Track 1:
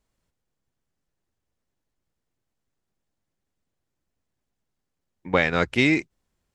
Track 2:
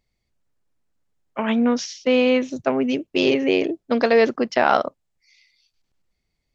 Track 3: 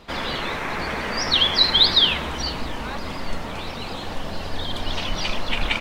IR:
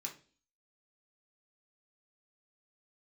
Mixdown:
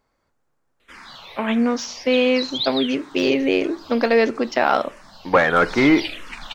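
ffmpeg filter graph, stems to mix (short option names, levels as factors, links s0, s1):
-filter_complex "[0:a]highshelf=f=2100:t=q:w=1.5:g=-11,asplit=2[s0][s1];[s1]highpass=f=720:p=1,volume=7.94,asoftclip=type=tanh:threshold=0.596[s2];[s0][s2]amix=inputs=2:normalize=0,lowpass=f=1100:p=1,volume=0.501,volume=1.19,asplit=2[s3][s4];[s4]volume=0.398[s5];[1:a]deesser=0.6,volume=0.891,asplit=2[s6][s7];[s7]volume=0.422[s8];[2:a]tiltshelf=f=820:g=-6,dynaudnorm=f=590:g=3:m=5.01,asplit=2[s9][s10];[s10]afreqshift=-1.5[s11];[s9][s11]amix=inputs=2:normalize=1,adelay=800,afade=t=out:st=3.88:d=0.25:silence=0.334965,afade=t=in:st=5.43:d=0.34:silence=0.223872[s12];[3:a]atrim=start_sample=2205[s13];[s5][s8]amix=inputs=2:normalize=0[s14];[s14][s13]afir=irnorm=-1:irlink=0[s15];[s3][s6][s12][s15]amix=inputs=4:normalize=0"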